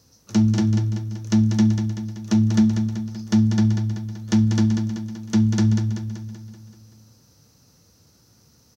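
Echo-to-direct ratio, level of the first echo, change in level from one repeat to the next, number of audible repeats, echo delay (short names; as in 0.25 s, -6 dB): -5.0 dB, -6.5 dB, -5.0 dB, 6, 0.191 s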